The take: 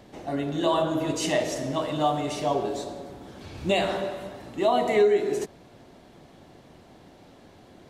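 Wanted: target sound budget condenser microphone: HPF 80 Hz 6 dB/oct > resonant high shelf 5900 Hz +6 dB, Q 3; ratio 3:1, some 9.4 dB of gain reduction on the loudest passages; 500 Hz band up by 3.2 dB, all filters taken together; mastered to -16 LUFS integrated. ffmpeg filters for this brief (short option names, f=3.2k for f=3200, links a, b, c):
-af "equalizer=f=500:t=o:g=4.5,acompressor=threshold=-26dB:ratio=3,highpass=f=80:p=1,highshelf=f=5.9k:t=q:w=3:g=6,volume=13.5dB"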